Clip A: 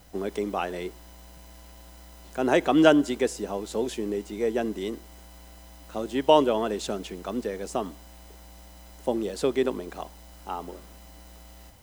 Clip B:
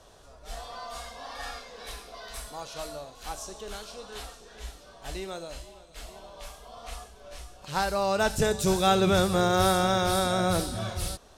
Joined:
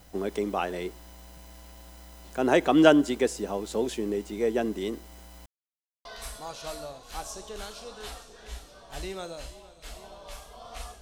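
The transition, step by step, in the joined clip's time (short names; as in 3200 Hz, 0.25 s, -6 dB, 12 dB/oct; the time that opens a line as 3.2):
clip A
5.46–6.05 mute
6.05 switch to clip B from 2.17 s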